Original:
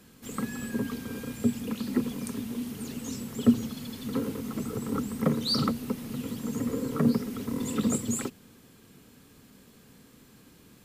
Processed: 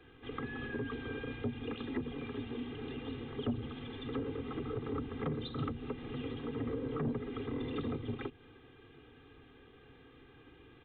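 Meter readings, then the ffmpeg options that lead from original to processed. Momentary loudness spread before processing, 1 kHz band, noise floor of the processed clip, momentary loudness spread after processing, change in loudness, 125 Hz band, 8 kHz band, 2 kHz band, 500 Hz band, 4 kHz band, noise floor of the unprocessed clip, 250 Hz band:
10 LU, -6.0 dB, -59 dBFS, 21 LU, -9.0 dB, -6.0 dB, under -40 dB, -2.0 dB, -4.0 dB, -12.5 dB, -56 dBFS, -10.5 dB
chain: -filter_complex "[0:a]aecho=1:1:2.5:0.93,acrossover=split=230[a][b];[b]acompressor=threshold=-33dB:ratio=5[c];[a][c]amix=inputs=2:normalize=0,aresample=8000,asoftclip=type=tanh:threshold=-24dB,aresample=44100,volume=-3dB"

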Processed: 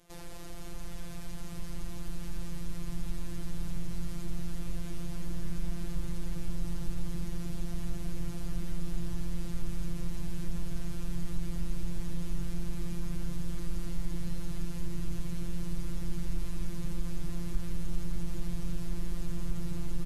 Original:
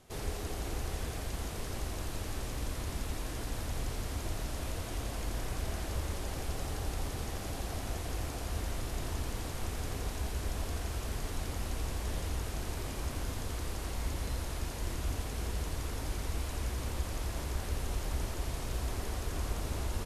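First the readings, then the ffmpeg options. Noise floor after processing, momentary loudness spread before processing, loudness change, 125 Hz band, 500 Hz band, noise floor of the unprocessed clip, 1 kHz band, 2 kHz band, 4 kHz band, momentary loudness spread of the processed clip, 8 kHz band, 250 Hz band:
-35 dBFS, 2 LU, -1.5 dB, -0.5 dB, -7.0 dB, -39 dBFS, -10.0 dB, -7.5 dB, -7.0 dB, 4 LU, -7.0 dB, +5.0 dB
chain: -af "afftfilt=real='hypot(re,im)*cos(PI*b)':imag='0':win_size=1024:overlap=0.75,alimiter=level_in=5.5dB:limit=-24dB:level=0:latency=1:release=152,volume=-5.5dB,asubboost=boost=9:cutoff=200,volume=1dB"

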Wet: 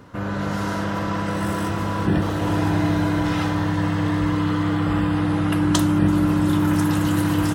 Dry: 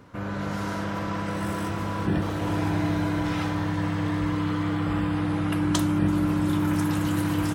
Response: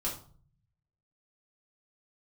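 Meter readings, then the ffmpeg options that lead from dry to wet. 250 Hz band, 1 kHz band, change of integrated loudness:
+5.0 dB, +5.0 dB, +5.0 dB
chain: -af "bandreject=f=2.3k:w=13,volume=5dB"

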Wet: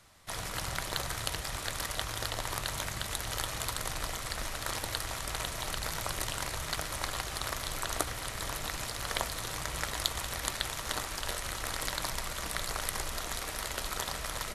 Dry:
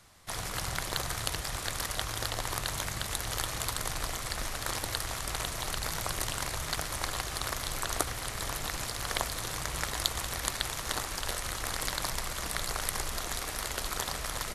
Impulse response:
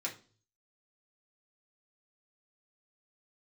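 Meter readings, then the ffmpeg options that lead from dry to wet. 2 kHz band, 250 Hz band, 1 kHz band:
-1.0 dB, -1.5 dB, -1.0 dB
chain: -filter_complex "[0:a]asplit=2[a][b];[1:a]atrim=start_sample=2205,asetrate=74970,aresample=44100,lowpass=4.4k[c];[b][c]afir=irnorm=-1:irlink=0,volume=-7dB[d];[a][d]amix=inputs=2:normalize=0,volume=-2dB"

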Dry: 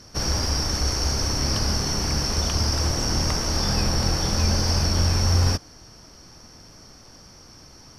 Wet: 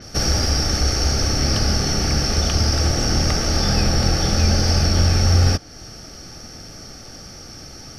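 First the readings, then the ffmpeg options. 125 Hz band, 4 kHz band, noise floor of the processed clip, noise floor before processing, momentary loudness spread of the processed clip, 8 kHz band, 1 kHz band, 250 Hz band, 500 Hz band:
+5.0 dB, +3.5 dB, -39 dBFS, -48 dBFS, 20 LU, +3.0 dB, +3.0 dB, +5.0 dB, +5.0 dB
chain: -filter_complex "[0:a]asplit=2[a][b];[b]acompressor=threshold=-34dB:ratio=6,volume=-0.5dB[c];[a][c]amix=inputs=2:normalize=0,asuperstop=centerf=1000:order=4:qfactor=4.3,adynamicequalizer=threshold=0.0141:dfrequency=6000:dqfactor=0.7:tfrequency=6000:tqfactor=0.7:attack=5:release=100:ratio=0.375:range=2.5:mode=cutabove:tftype=highshelf,volume=3.5dB"

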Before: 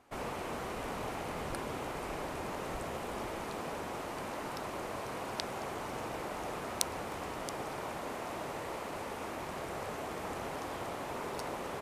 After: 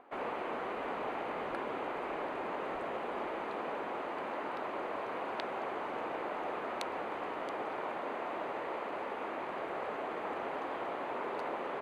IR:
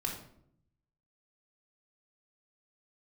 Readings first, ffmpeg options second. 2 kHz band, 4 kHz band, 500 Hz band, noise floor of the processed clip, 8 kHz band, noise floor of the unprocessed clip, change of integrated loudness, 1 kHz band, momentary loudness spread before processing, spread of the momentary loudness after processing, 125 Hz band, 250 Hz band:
+1.5 dB, -5.5 dB, +2.0 dB, -40 dBFS, -19.0 dB, -41 dBFS, +1.0 dB, +2.5 dB, 2 LU, 1 LU, -11.5 dB, -1.0 dB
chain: -filter_complex "[0:a]acrossover=split=240 3100:gain=0.1 1 0.0631[a][b][c];[a][b][c]amix=inputs=3:normalize=0,bandreject=f=5.4k:w=7.1,acrossover=split=180|1300|7200[d][e][f][g];[e]acompressor=mode=upward:threshold=-56dB:ratio=2.5[h];[d][h][f][g]amix=inputs=4:normalize=0,volume=2.5dB"

